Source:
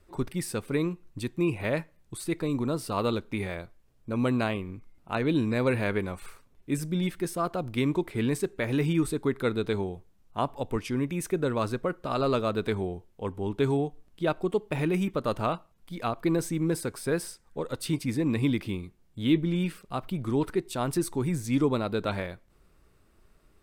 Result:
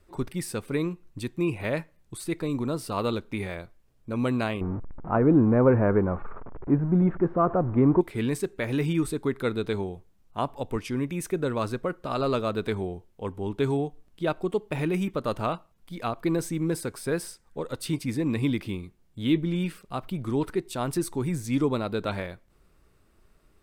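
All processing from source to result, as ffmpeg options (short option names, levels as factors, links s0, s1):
-filter_complex "[0:a]asettb=1/sr,asplit=3[s0][s1][s2];[s0]atrim=end=4.614[s3];[s1]atrim=start=4.61:end=8.01,asetpts=PTS-STARTPTS,afade=t=in:d=0.004:c=qsin,afade=t=out:st=3.396:d=0.004:c=qsin,aeval=exprs='val(0)+0.5*0.0126*sgn(val(0))':c=same,lowpass=f=1300:w=0.5412,lowpass=f=1300:w=1.3066,acontrast=52[s4];[s2]atrim=start=8.006[s5];[s3][s4]acrossfade=d=0.004:c1=hsin:c2=qsin[s6];[s6][s5]acrossfade=d=0.004:c1=qsin:c2=hsin"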